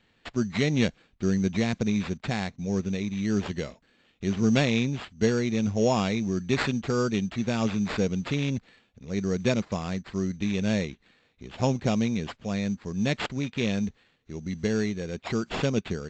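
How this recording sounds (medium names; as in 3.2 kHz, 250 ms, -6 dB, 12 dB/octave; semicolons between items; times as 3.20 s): aliases and images of a low sample rate 6.1 kHz, jitter 0%; AAC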